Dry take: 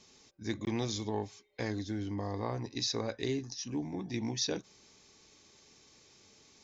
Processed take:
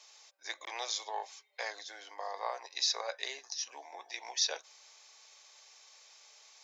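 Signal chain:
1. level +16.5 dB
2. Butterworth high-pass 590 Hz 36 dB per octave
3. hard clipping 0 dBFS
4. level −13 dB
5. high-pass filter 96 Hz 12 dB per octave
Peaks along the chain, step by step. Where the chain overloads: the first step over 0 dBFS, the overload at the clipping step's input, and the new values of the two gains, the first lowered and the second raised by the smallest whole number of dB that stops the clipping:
−3.0, −4.5, −4.5, −17.5, −17.5 dBFS
no step passes full scale

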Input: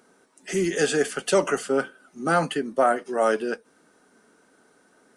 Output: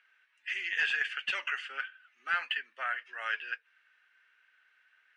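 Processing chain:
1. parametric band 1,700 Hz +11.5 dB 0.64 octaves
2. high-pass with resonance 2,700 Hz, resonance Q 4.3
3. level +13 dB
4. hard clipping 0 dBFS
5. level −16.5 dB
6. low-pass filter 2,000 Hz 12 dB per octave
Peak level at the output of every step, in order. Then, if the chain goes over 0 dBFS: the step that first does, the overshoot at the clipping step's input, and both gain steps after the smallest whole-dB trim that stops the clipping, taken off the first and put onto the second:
−4.0, −7.0, +6.0, 0.0, −16.5, −18.0 dBFS
step 3, 6.0 dB
step 3 +7 dB, step 5 −10.5 dB

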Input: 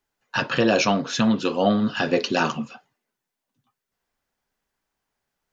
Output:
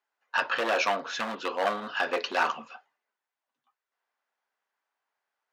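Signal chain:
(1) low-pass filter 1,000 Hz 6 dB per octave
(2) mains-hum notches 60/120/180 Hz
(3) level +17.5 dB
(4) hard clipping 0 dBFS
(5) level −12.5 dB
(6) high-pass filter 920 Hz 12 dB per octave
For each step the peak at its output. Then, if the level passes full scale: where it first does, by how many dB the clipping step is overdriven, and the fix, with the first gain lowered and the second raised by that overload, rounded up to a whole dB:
−8.0, −8.0, +9.5, 0.0, −12.5, −11.0 dBFS
step 3, 9.5 dB
step 3 +7.5 dB, step 5 −2.5 dB

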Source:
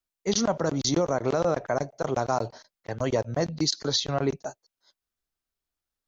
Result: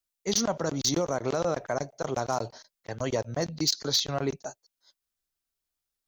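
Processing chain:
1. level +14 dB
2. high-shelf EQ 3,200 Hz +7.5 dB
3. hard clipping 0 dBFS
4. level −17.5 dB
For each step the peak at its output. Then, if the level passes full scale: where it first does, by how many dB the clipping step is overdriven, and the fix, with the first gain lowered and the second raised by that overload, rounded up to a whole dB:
+2.0, +7.0, 0.0, −17.5 dBFS
step 1, 7.0 dB
step 1 +7 dB, step 4 −10.5 dB

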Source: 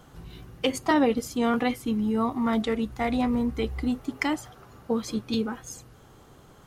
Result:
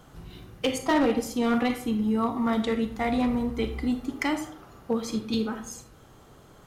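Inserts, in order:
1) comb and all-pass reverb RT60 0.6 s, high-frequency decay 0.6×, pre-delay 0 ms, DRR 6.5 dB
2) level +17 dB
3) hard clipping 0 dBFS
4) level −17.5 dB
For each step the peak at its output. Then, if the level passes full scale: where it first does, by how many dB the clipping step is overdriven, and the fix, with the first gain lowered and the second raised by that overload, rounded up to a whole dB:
−10.0, +7.0, 0.0, −17.5 dBFS
step 2, 7.0 dB
step 2 +10 dB, step 4 −10.5 dB

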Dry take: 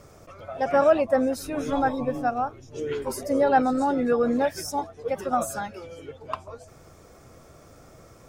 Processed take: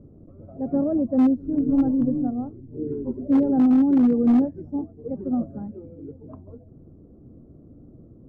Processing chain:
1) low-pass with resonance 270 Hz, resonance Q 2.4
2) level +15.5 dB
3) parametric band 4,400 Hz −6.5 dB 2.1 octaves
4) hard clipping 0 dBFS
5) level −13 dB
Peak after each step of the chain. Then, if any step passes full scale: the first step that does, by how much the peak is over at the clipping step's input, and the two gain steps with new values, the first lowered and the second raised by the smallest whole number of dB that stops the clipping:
−11.5, +4.0, +4.0, 0.0, −13.0 dBFS
step 2, 4.0 dB
step 2 +11.5 dB, step 5 −9 dB

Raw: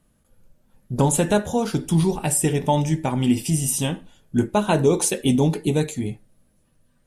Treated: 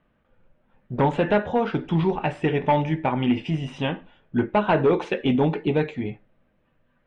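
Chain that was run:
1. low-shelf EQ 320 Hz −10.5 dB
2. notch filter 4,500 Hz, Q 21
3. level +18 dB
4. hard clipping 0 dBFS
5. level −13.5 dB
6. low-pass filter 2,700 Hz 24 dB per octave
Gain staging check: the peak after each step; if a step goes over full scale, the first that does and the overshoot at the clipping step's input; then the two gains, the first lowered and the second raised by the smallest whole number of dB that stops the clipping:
−8.5, −8.5, +9.5, 0.0, −13.5, −12.0 dBFS
step 3, 9.5 dB
step 3 +8 dB, step 5 −3.5 dB

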